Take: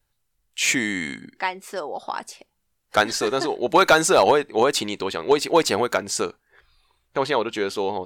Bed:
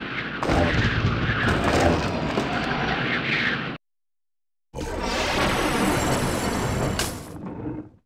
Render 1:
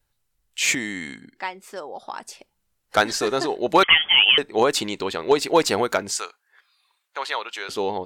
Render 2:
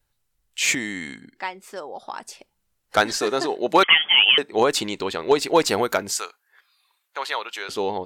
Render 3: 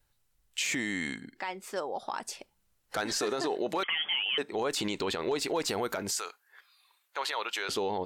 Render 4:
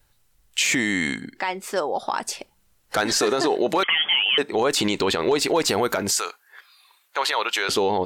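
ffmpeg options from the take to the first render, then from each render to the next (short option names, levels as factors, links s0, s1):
-filter_complex "[0:a]asettb=1/sr,asplit=3[s0][s1][s2];[s0]atrim=end=3.834[s3];[s1]atrim=start=3.83:end=4.38,asetpts=PTS-STARTPTS,afade=t=in:d=0.004:c=qsin,afade=t=out:st=0.546:d=0.004:c=qsin,lowpass=f=3000:t=q:w=0.5098,lowpass=f=3000:t=q:w=0.6013,lowpass=f=3000:t=q:w=0.9,lowpass=f=3000:t=q:w=2.563,afreqshift=-3500[s4];[s2]atrim=start=4.376[s5];[s3][s4]acrossfade=d=0.004:c1=hsin:c2=qsin[s6];[s6][s5]acrossfade=d=0.004:c1=qsin:c2=hsin,asettb=1/sr,asplit=3[s7][s8][s9];[s7]atrim=end=6.124[s10];[s8]atrim=start=6.12:end=7.69,asetpts=PTS-STARTPTS,afade=t=in:d=0.004:c=qsin,afade=t=out:st=1.566:d=0.004:c=qsin,highpass=1000[s11];[s9]atrim=start=7.686[s12];[s10][s11]acrossfade=d=0.004:c1=hsin:c2=qsin[s13];[s13][s12]acrossfade=d=0.004:c1=qsin:c2=hsin,asplit=3[s14][s15][s16];[s14]atrim=end=0.752[s17];[s15]atrim=start=0.748:end=2.272,asetpts=PTS-STARTPTS,volume=0.596[s18];[s16]atrim=start=2.268[s19];[s17][s18]acrossfade=d=0.004:c1=hsin:c2=hsin[s20];[s20][s19]acrossfade=d=0.004:c1=hsin:c2=hsin"
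-filter_complex "[0:a]asettb=1/sr,asplit=3[s0][s1][s2];[s0]atrim=end=3.184[s3];[s1]atrim=start=3.18:end=4.53,asetpts=PTS-STARTPTS,afade=t=in:d=0.004:c=qsin,afade=t=out:st=1.346:d=0.004:c=qsin,highpass=160[s4];[s2]atrim=start=4.526[s5];[s3][s4]acrossfade=d=0.004:c1=hsin:c2=qsin[s6];[s6][s5]acrossfade=d=0.004:c1=qsin:c2=hsin,asettb=1/sr,asplit=3[s7][s8][s9];[s7]atrim=end=5.694[s10];[s8]atrim=start=5.69:end=7.62,asetpts=PTS-STARTPTS,afade=t=in:d=0.004:c=qsin,afade=t=out:st=1.926:d=0.004:c=qsin,equalizer=f=13000:t=o:w=0.4:g=9[s11];[s9]atrim=start=7.616[s12];[s10][s11]acrossfade=d=0.004:c1=hsin:c2=qsin[s13];[s13][s12]acrossfade=d=0.004:c1=qsin:c2=hsin"
-af "acompressor=threshold=0.1:ratio=6,alimiter=limit=0.0794:level=0:latency=1:release=27"
-af "volume=3.16"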